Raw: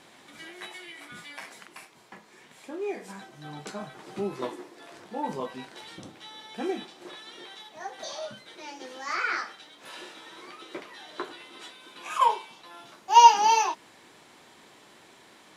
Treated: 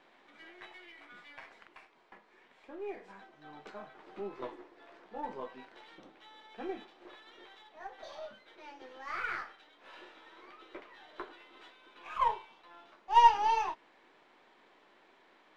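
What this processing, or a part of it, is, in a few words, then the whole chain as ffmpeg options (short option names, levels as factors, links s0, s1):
crystal radio: -af "highpass=300,lowpass=2700,aeval=exprs='if(lt(val(0),0),0.708*val(0),val(0))':c=same,volume=0.501"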